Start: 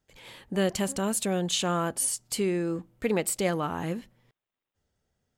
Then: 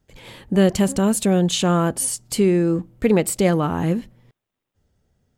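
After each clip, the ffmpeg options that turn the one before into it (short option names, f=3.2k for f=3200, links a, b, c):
-af "lowshelf=f=440:g=9,volume=4.5dB"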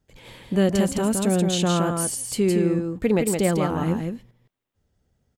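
-af "aecho=1:1:167:0.596,volume=-4dB"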